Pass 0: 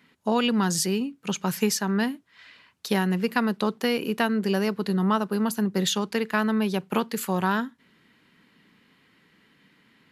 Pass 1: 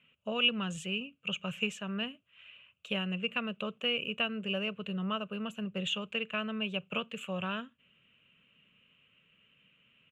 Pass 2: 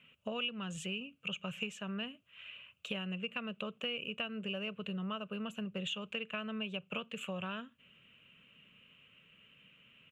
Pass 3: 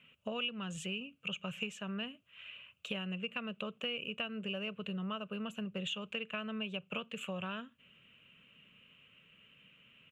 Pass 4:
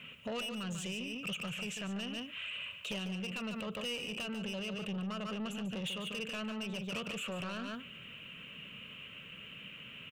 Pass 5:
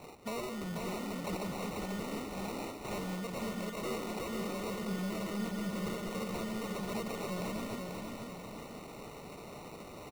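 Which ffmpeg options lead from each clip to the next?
-af "firequalizer=gain_entry='entry(120,0);entry(310,-14);entry(580,2);entry(850,-16);entry(1200,-2);entry(1900,-11);entry(2700,13);entry(4700,-29);entry(7200,-9);entry(11000,-27)':delay=0.05:min_phase=1,volume=-6dB"
-af "acompressor=threshold=-43dB:ratio=3,volume=4dB"
-af anull
-af "asoftclip=type=tanh:threshold=-39.5dB,aecho=1:1:145:0.376,alimiter=level_in=23dB:limit=-24dB:level=0:latency=1:release=29,volume=-23dB,volume=13dB"
-af "acrusher=samples=27:mix=1:aa=0.000001,aecho=1:1:489|978|1467|1956|2445|2934:0.631|0.284|0.128|0.0575|0.0259|0.0116"

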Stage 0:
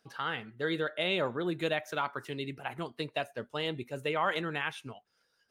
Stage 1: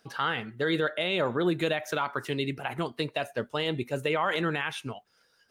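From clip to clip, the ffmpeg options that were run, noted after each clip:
-af "alimiter=level_in=0.5dB:limit=-24dB:level=0:latency=1:release=48,volume=-0.5dB,volume=7.5dB"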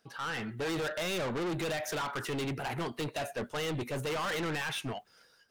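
-af "dynaudnorm=f=140:g=5:m=12dB,asoftclip=type=tanh:threshold=-25dB,volume=-6.5dB"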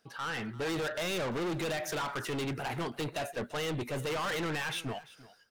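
-af "aecho=1:1:343:0.112"

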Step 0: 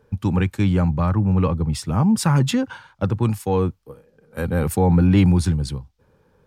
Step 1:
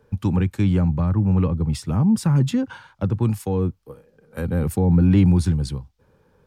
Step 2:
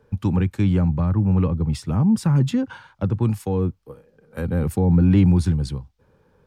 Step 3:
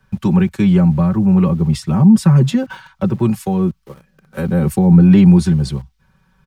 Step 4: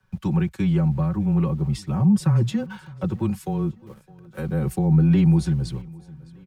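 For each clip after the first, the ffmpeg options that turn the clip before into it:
-filter_complex "[0:a]acrossover=split=420[a][b];[b]acompressor=threshold=-33dB:ratio=4[c];[a][c]amix=inputs=2:normalize=0"
-af "highshelf=f=6.3k:g=-4.5"
-filter_complex "[0:a]aecho=1:1:5.3:0.79,acrossover=split=210|880|2200[a][b][c][d];[b]aeval=exprs='val(0)*gte(abs(val(0)),0.00422)':c=same[e];[a][e][c][d]amix=inputs=4:normalize=0,volume=5dB"
-af "aecho=1:1:610|1220|1830:0.0708|0.0333|0.0156,afreqshift=-15,volume=-8.5dB"

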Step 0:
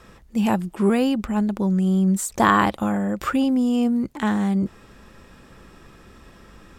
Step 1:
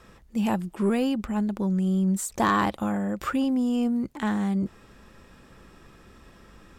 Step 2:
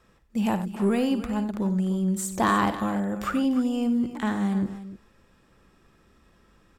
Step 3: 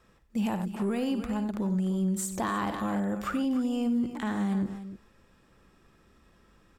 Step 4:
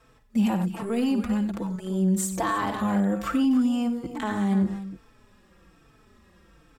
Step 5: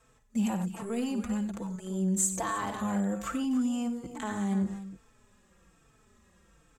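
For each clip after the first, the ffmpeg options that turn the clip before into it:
-af "asoftclip=type=tanh:threshold=-9dB,volume=-4dB"
-af "agate=range=-9dB:threshold=-42dB:ratio=16:detection=peak,aecho=1:1:55|93|297:0.2|0.211|0.2"
-af "alimiter=limit=-20.5dB:level=0:latency=1:release=75,volume=-1.5dB"
-filter_complex "[0:a]asplit=2[a][b];[b]adelay=4,afreqshift=-1.2[c];[a][c]amix=inputs=2:normalize=1,volume=7dB"
-af "superequalizer=6b=0.631:15b=3.16:16b=1.58,volume=-6dB"

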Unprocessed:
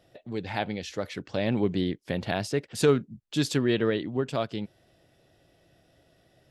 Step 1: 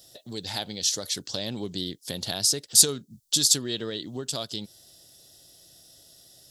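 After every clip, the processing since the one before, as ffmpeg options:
-af "acompressor=threshold=-33dB:ratio=2,aexciter=amount=8.9:drive=8:freq=3.6k,volume=-1.5dB"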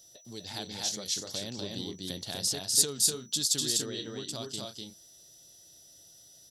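-af "aecho=1:1:247.8|279.9:0.794|0.355,aeval=exprs='val(0)+0.00398*sin(2*PI*5900*n/s)':c=same,volume=-7.5dB"

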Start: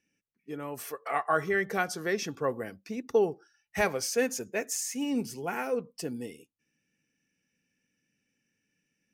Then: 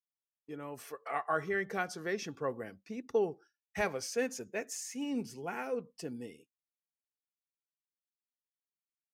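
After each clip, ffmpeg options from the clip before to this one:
-af "highshelf=f=10k:g=-10,agate=range=-33dB:threshold=-48dB:ratio=3:detection=peak,volume=-5.5dB"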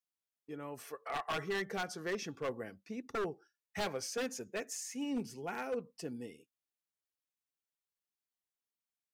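-af "aeval=exprs='0.0376*(abs(mod(val(0)/0.0376+3,4)-2)-1)':c=same,volume=-1dB"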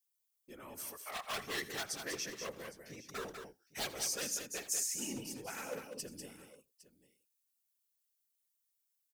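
-af "crystalizer=i=6:c=0,afftfilt=real='hypot(re,im)*cos(2*PI*random(0))':imag='hypot(re,im)*sin(2*PI*random(1))':win_size=512:overlap=0.75,aecho=1:1:82|196|809:0.133|0.473|0.119,volume=-2.5dB"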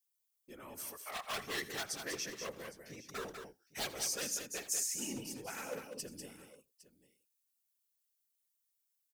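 -af anull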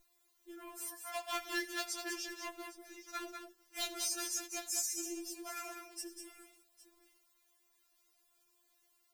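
-af "aeval=exprs='val(0)+0.000708*(sin(2*PI*50*n/s)+sin(2*PI*2*50*n/s)/2+sin(2*PI*3*50*n/s)/3+sin(2*PI*4*50*n/s)/4+sin(2*PI*5*50*n/s)/5)':c=same,acrusher=bits=10:mix=0:aa=0.000001,afftfilt=real='re*4*eq(mod(b,16),0)':imag='im*4*eq(mod(b,16),0)':win_size=2048:overlap=0.75,volume=2.5dB"

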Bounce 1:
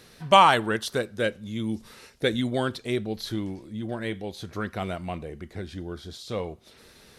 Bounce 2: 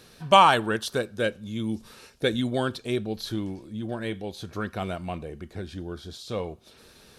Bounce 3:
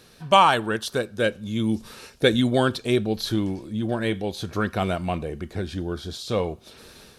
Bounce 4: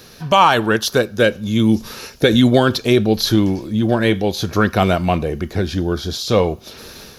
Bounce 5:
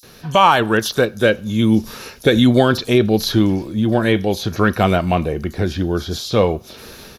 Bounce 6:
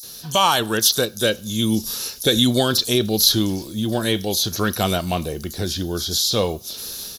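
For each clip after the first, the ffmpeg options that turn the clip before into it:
-af "bandreject=f=2k:w=8.5"
-af "dynaudnorm=f=540:g=3:m=6.5dB"
-filter_complex "[0:a]acrossover=split=640[a][b];[b]aexciter=amount=1.2:drive=3.6:freq=4.9k[c];[a][c]amix=inputs=2:normalize=0,alimiter=level_in=10.5dB:limit=-1dB:release=50:level=0:latency=1,volume=-1dB"
-filter_complex "[0:a]acrossover=split=5100[a][b];[a]adelay=30[c];[c][b]amix=inputs=2:normalize=0"
-af "aexciter=amount=4.5:drive=7.7:freq=3.3k,volume=-6dB"

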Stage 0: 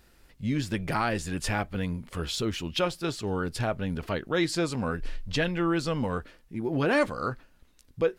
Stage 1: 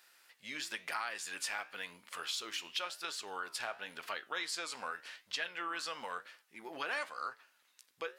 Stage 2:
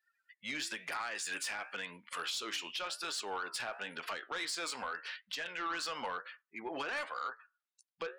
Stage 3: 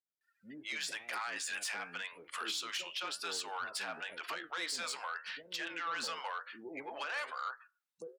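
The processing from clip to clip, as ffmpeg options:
-af "highpass=1.1k,acompressor=threshold=-38dB:ratio=2.5,flanger=delay=8.9:depth=8.4:regen=82:speed=0.95:shape=triangular,volume=5dB"
-filter_complex "[0:a]afftdn=nr=35:nf=-56,acrossover=split=320[a][b];[b]alimiter=level_in=9dB:limit=-24dB:level=0:latency=1:release=88,volume=-9dB[c];[a][c]amix=inputs=2:normalize=0,aeval=exprs='0.0266*sin(PI/2*1.41*val(0)/0.0266)':c=same"
-filter_complex "[0:a]highpass=f=200:p=1,acrossover=split=520[a][b];[b]adelay=210[c];[a][c]amix=inputs=2:normalize=0"

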